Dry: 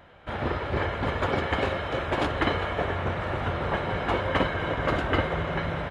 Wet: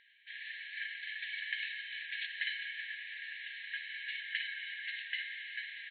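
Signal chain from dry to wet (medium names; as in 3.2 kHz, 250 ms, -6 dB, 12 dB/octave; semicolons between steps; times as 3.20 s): brick-wall FIR band-pass 1.6–4.4 kHz; trim -4.5 dB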